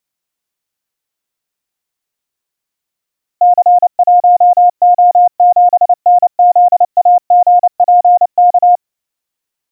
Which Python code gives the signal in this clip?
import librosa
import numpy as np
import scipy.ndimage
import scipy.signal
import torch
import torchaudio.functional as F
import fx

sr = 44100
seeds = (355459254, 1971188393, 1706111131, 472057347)

y = fx.morse(sr, text='C1O7NZAGPK', wpm=29, hz=712.0, level_db=-3.0)